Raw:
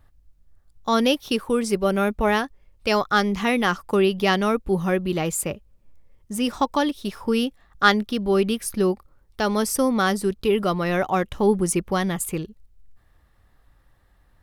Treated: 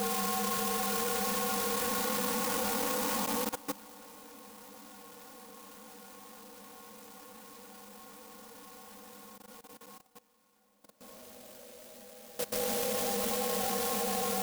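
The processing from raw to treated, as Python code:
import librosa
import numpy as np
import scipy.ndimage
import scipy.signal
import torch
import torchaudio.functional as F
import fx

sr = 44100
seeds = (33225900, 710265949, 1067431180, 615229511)

y = fx.partial_stretch(x, sr, pct=120)
y = fx.doppler_pass(y, sr, speed_mps=6, closest_m=7.4, pass_at_s=3.21)
y = fx.highpass(y, sr, hz=500.0, slope=6)
y = fx.peak_eq(y, sr, hz=1700.0, db=-6.5, octaves=1.9)
y = fx.paulstretch(y, sr, seeds[0], factor=25.0, window_s=0.25, from_s=2.29)
y = fx.peak_eq(y, sr, hz=6000.0, db=-6.0, octaves=0.23)
y = fx.doubler(y, sr, ms=16.0, db=-10.5)
y = fx.echo_diffused(y, sr, ms=1041, feedback_pct=72, wet_db=-11.0)
y = fx.level_steps(y, sr, step_db=19)
y = fx.clock_jitter(y, sr, seeds[1], jitter_ms=0.12)
y = y * 10.0 ** (6.0 / 20.0)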